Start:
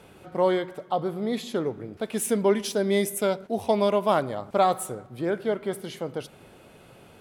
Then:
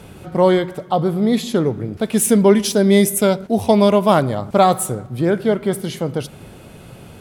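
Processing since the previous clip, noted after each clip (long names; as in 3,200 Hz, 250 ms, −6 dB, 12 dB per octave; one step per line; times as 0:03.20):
bass and treble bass +9 dB, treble +4 dB
level +7.5 dB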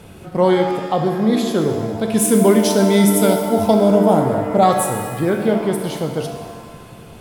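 gain on a spectral selection 0:03.74–0:04.63, 960–6,000 Hz −11 dB
reverb with rising layers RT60 1.5 s, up +7 semitones, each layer −8 dB, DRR 4.5 dB
level −1.5 dB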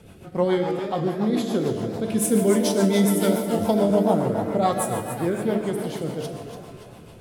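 rotating-speaker cabinet horn 7 Hz
feedback echo with a swinging delay time 280 ms, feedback 49%, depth 214 cents, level −10 dB
level −5 dB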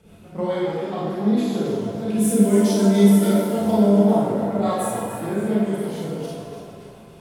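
convolution reverb RT60 0.80 s, pre-delay 28 ms, DRR −5.5 dB
level −7 dB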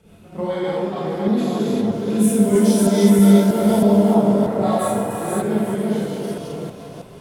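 delay that plays each chunk backwards 319 ms, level −1 dB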